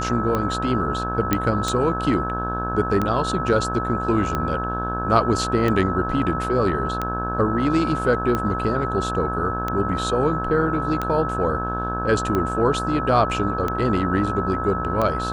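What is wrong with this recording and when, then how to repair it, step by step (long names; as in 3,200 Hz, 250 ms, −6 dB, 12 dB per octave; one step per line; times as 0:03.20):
mains buzz 60 Hz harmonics 28 −28 dBFS
scratch tick 45 rpm −11 dBFS
whistle 1,300 Hz −26 dBFS
0:01.33: click −4 dBFS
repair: click removal
hum removal 60 Hz, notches 28
notch filter 1,300 Hz, Q 30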